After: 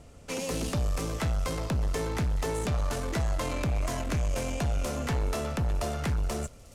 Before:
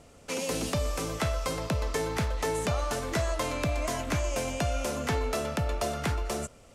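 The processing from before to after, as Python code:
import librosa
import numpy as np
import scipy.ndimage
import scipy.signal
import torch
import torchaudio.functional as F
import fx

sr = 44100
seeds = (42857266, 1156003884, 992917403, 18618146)

p1 = fx.low_shelf(x, sr, hz=140.0, db=11.0)
p2 = fx.tube_stage(p1, sr, drive_db=24.0, bias=0.4)
y = p2 + fx.echo_wet_highpass(p2, sr, ms=422, feedback_pct=73, hz=5100.0, wet_db=-17, dry=0)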